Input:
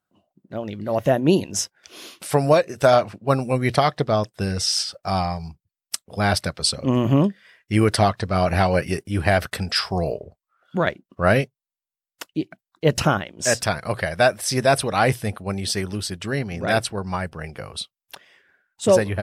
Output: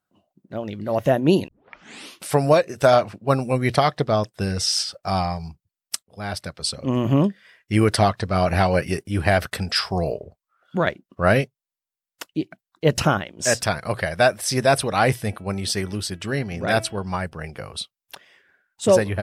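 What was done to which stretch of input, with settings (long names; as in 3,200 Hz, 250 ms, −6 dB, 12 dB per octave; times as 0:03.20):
0:01.48: tape start 0.66 s
0:06.03–0:07.29: fade in, from −15.5 dB
0:15.09–0:17.14: hum removal 326.6 Hz, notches 10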